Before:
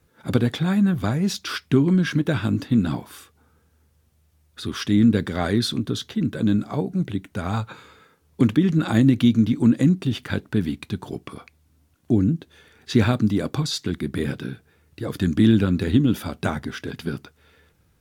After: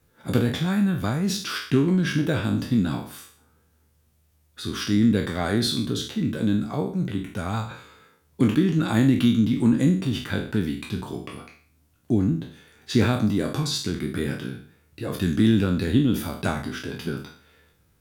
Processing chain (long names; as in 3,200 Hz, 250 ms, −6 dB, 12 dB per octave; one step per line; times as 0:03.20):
peak hold with a decay on every bin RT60 0.49 s
high-shelf EQ 9,800 Hz +5.5 dB
level −3 dB